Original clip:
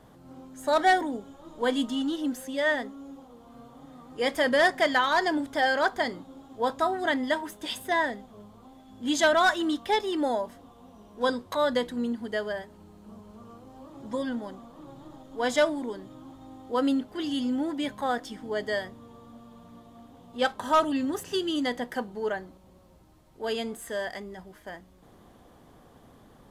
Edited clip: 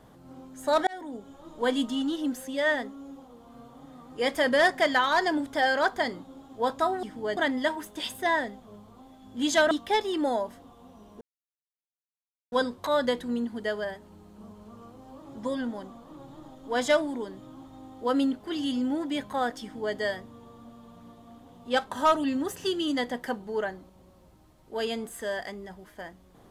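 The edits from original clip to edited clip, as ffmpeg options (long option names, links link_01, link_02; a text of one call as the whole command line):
ffmpeg -i in.wav -filter_complex "[0:a]asplit=6[link_01][link_02][link_03][link_04][link_05][link_06];[link_01]atrim=end=0.87,asetpts=PTS-STARTPTS,afade=type=out:start_time=0.866:duration=0.004:curve=hsin[link_07];[link_02]atrim=start=0.87:end=7.032,asetpts=PTS-STARTPTS,afade=type=in:duration=0.49[link_08];[link_03]atrim=start=18.298:end=18.642[link_09];[link_04]atrim=start=7.028:end=9.372[link_10];[link_05]atrim=start=9.698:end=11.2,asetpts=PTS-STARTPTS,afade=type=out:start_time=1.498:duration=0.004:curve=hsin,apad=pad_dur=1.31[link_11];[link_06]atrim=start=11.2,asetpts=PTS-STARTPTS,afade=type=in:duration=0.004:curve=hsin[link_12];[link_07][link_08]concat=n=2:v=0:a=1[link_13];[link_13][link_09]acrossfade=duration=0.004:curve1=hsin:curve2=hsin[link_14];[link_14][link_10]acrossfade=duration=0.004:curve1=hsin:curve2=hsin[link_15];[link_11][link_12]concat=n=2:v=0:a=1[link_16];[link_15][link_16]acrossfade=duration=0.004:curve1=hsin:curve2=hsin" out.wav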